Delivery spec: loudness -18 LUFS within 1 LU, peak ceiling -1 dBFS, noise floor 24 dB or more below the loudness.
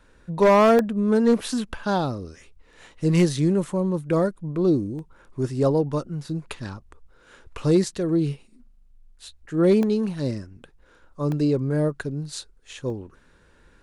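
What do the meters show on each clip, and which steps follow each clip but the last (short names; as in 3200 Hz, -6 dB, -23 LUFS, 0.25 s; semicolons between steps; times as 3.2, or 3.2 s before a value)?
clipped 0.4%; flat tops at -11.0 dBFS; dropouts 5; longest dropout 1.2 ms; loudness -23.0 LUFS; peak -11.0 dBFS; loudness target -18.0 LUFS
-> clip repair -11 dBFS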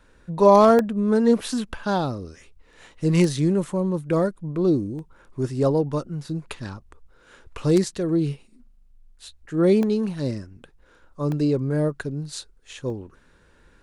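clipped 0.0%; dropouts 5; longest dropout 1.2 ms
-> interpolate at 0.79/4.99/9.83/11.32/12.9, 1.2 ms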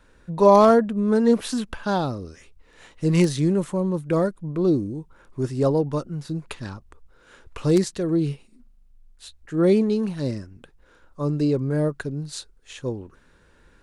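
dropouts 0; loudness -22.5 LUFS; peak -3.0 dBFS; loudness target -18.0 LUFS
-> gain +4.5 dB; limiter -1 dBFS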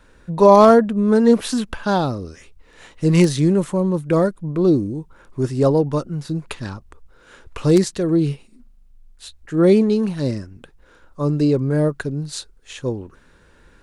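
loudness -18.0 LUFS; peak -1.0 dBFS; noise floor -52 dBFS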